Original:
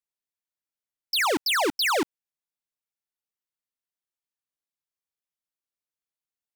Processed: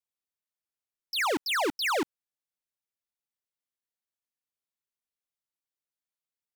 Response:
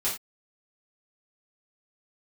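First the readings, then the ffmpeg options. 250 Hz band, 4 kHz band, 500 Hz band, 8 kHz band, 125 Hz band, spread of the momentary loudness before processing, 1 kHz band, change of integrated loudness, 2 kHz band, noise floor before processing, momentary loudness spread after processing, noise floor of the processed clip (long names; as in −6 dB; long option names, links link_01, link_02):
−3.5 dB, −6.0 dB, −3.5 dB, −6.5 dB, −3.5 dB, 5 LU, −3.5 dB, −5.0 dB, −4.0 dB, below −85 dBFS, 6 LU, below −85 dBFS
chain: -filter_complex "[0:a]acrossover=split=3500[link_01][link_02];[link_02]acompressor=threshold=-31dB:ratio=4:attack=1:release=60[link_03];[link_01][link_03]amix=inputs=2:normalize=0,volume=-3.5dB"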